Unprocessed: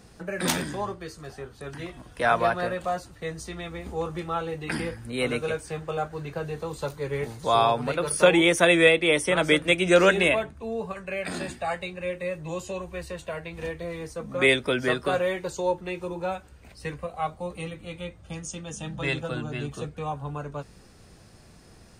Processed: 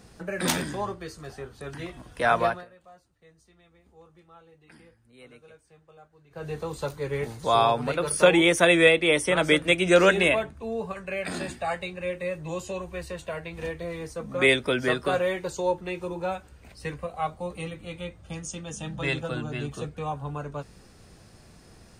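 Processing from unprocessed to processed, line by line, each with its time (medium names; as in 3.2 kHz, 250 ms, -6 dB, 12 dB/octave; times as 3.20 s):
2.44–6.51 s: dip -23.5 dB, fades 0.21 s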